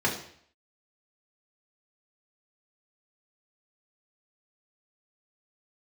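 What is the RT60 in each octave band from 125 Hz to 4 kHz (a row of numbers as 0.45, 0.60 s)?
0.65, 0.60, 0.60, 0.60, 0.60, 0.60 s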